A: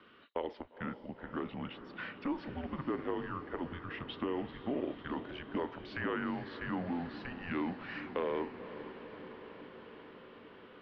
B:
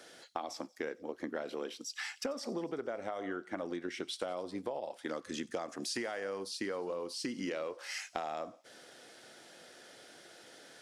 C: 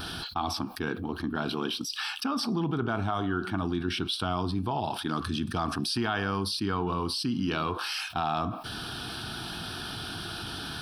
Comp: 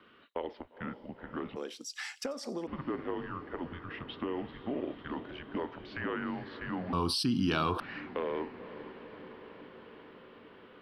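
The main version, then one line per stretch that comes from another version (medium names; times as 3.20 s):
A
1.56–2.67 s: from B
6.93–7.80 s: from C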